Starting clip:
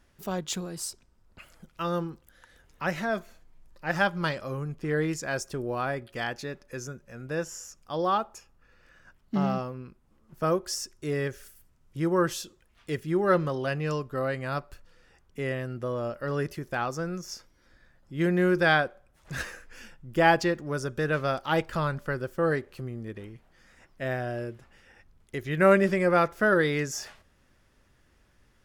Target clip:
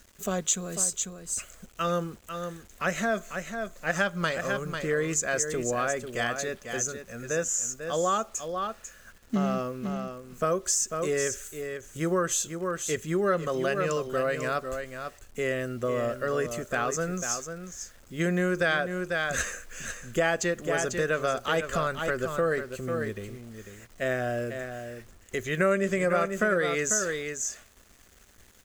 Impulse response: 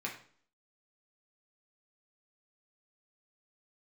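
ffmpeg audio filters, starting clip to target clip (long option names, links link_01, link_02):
-af "superequalizer=6b=0.501:9b=0.398:14b=0.708:15b=3.55,acrusher=bits=9:mix=0:aa=0.000001,equalizer=frequency=140:width_type=o:width=0.33:gain=-12,aecho=1:1:495:0.355,acompressor=threshold=-28dB:ratio=3,volume=4.5dB"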